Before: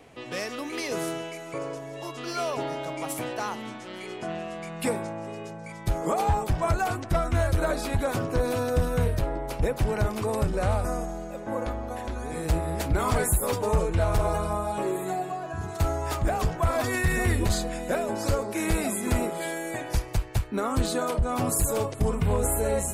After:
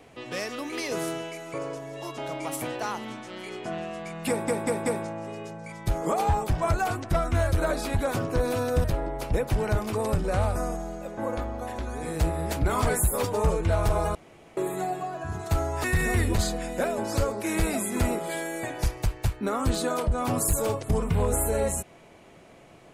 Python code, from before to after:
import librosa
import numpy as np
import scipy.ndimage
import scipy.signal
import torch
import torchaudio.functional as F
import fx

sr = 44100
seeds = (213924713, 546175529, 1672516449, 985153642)

y = fx.edit(x, sr, fx.cut(start_s=2.18, length_s=0.57),
    fx.stutter(start_s=4.86, slice_s=0.19, count=4),
    fx.cut(start_s=8.84, length_s=0.29),
    fx.room_tone_fill(start_s=14.44, length_s=0.42),
    fx.cut(start_s=16.13, length_s=0.82), tone=tone)